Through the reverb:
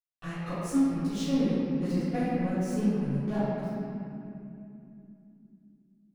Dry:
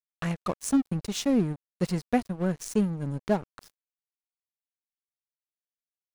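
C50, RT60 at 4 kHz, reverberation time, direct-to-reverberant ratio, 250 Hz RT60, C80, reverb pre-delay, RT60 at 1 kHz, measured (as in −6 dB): −6.0 dB, 1.7 s, 2.8 s, −18.0 dB, 4.7 s, −3.0 dB, 3 ms, 2.4 s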